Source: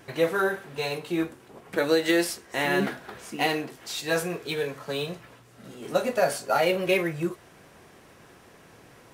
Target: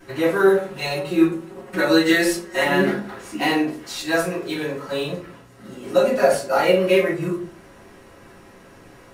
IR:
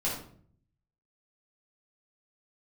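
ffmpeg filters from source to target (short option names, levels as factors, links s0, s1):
-filter_complex "[0:a]asettb=1/sr,asplit=3[s0][s1][s2];[s0]atrim=end=0.464[s3];[s1]atrim=start=0.46:end=2.64,asetpts=PTS-STARTPTS,afade=t=in:d=0.004:c=qsin,afade=t=out:st=2.176:d=0.004:c=qsin,aecho=1:1:5.4:0.78,atrim=end_sample=96138[s4];[s2]atrim=start=2.636[s5];[s3][s4]acrossfade=d=0.004:c1=hsin:c2=qsin[s6];[s6][s5]acrossfade=d=0.004:c1=qsin:c2=hsin[s7];[1:a]atrim=start_sample=2205,asetrate=83790,aresample=44100[s8];[s7][s8]afir=irnorm=-1:irlink=0,volume=1.33"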